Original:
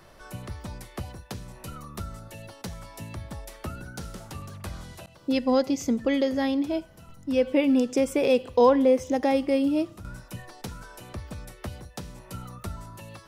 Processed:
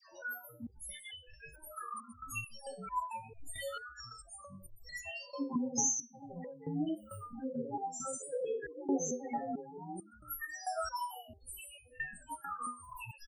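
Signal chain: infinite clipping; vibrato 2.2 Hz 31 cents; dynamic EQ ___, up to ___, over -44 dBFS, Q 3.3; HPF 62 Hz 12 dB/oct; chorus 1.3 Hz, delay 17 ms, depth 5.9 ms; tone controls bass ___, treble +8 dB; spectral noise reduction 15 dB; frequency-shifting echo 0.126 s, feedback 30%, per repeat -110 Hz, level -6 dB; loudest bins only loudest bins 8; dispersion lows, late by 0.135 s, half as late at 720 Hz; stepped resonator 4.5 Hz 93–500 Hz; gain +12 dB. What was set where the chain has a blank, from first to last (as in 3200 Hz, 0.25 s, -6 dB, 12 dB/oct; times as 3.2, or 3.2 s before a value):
1200 Hz, -3 dB, -13 dB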